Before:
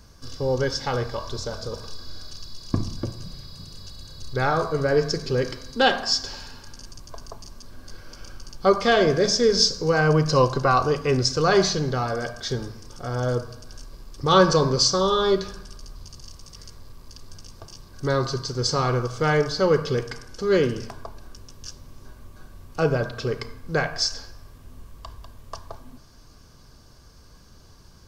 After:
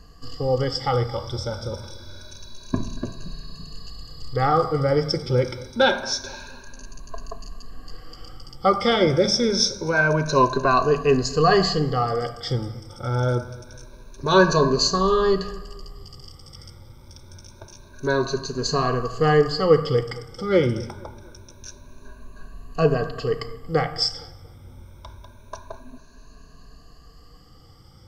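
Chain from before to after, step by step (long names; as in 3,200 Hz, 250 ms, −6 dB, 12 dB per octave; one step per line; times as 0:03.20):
rippled gain that drifts along the octave scale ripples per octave 1.5, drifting +0.26 Hz, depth 17 dB
high-shelf EQ 4,900 Hz −7 dB
on a send: feedback echo with a low-pass in the loop 231 ms, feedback 46%, low-pass 1,700 Hz, level −20.5 dB
on the sum: level −1 dB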